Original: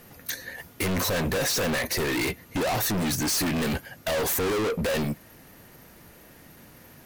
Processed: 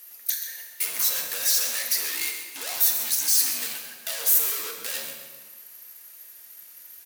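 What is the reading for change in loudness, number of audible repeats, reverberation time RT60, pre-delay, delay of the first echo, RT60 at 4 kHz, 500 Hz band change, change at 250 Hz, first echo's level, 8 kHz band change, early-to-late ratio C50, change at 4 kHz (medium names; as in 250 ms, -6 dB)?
+3.5 dB, 1, 1.5 s, 3 ms, 132 ms, 1.3 s, -16.5 dB, -24.5 dB, -10.5 dB, +6.5 dB, 4.0 dB, +2.0 dB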